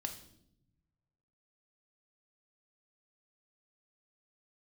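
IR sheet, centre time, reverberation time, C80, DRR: 14 ms, 0.75 s, 13.5 dB, 5.0 dB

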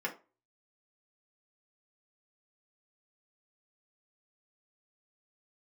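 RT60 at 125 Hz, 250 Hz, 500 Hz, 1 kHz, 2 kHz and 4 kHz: 0.25, 0.35, 0.30, 0.30, 0.25, 0.20 s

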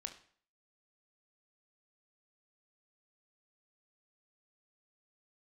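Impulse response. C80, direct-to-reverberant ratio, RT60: 15.5 dB, 6.5 dB, 0.50 s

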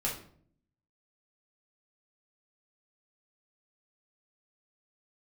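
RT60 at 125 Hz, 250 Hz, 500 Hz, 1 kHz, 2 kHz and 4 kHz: 0.90, 0.85, 0.65, 0.50, 0.45, 0.40 s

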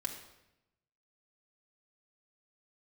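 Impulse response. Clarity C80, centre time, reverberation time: 9.5 dB, 23 ms, 0.90 s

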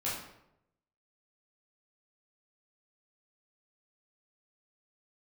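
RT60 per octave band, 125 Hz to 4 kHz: 1.0, 0.85, 0.90, 0.75, 0.65, 0.55 s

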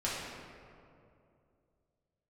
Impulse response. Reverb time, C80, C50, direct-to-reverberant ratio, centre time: 2.6 s, 0.5 dB, -1.5 dB, -8.0 dB, 0.121 s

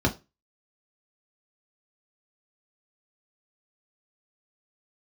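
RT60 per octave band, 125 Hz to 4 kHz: 0.30, 0.25, 0.25, 0.25, 0.20, 0.25 s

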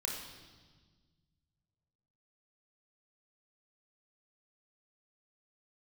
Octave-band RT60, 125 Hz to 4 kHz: 2.9, 2.1, 1.5, 1.4, 1.3, 1.5 s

